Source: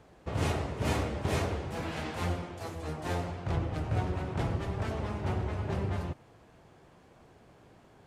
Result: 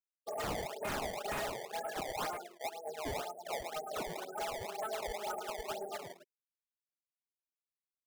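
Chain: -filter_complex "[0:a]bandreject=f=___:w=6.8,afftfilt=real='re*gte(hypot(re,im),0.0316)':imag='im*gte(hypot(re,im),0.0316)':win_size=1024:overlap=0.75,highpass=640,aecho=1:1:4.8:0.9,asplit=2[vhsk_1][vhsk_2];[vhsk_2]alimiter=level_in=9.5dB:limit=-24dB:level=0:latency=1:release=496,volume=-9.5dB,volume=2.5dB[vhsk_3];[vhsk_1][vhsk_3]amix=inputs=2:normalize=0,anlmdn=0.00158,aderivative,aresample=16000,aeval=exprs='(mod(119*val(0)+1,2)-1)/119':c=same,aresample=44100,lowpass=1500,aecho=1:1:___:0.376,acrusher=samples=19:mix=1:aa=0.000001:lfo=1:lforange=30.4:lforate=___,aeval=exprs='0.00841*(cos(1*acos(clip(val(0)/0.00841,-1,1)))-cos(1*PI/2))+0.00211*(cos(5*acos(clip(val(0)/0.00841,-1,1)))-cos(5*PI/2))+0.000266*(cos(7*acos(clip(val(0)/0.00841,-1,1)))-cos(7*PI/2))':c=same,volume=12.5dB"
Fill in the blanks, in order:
990, 109, 2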